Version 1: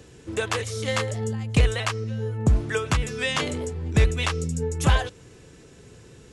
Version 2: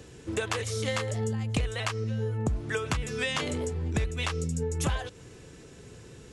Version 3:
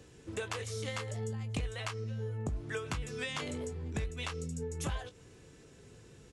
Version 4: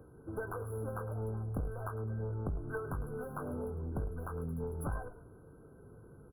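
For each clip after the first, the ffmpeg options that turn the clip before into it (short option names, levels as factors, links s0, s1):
-af "acompressor=threshold=0.0501:ratio=6"
-filter_complex "[0:a]asplit=2[s0][s1];[s1]adelay=20,volume=0.299[s2];[s0][s2]amix=inputs=2:normalize=0,volume=0.398"
-filter_complex "[0:a]aeval=exprs='clip(val(0),-1,0.0133)':c=same,asplit=4[s0][s1][s2][s3];[s1]adelay=104,afreqshift=-40,volume=0.211[s4];[s2]adelay=208,afreqshift=-80,volume=0.0716[s5];[s3]adelay=312,afreqshift=-120,volume=0.0245[s6];[s0][s4][s5][s6]amix=inputs=4:normalize=0,afftfilt=real='re*(1-between(b*sr/4096,1600,10000))':imag='im*(1-between(b*sr/4096,1600,10000))':win_size=4096:overlap=0.75,volume=1.12"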